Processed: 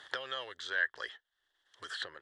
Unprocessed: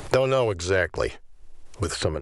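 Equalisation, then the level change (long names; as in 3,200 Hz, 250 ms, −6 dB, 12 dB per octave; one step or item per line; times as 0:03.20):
pair of resonant band-passes 2,400 Hz, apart 0.91 octaves
0.0 dB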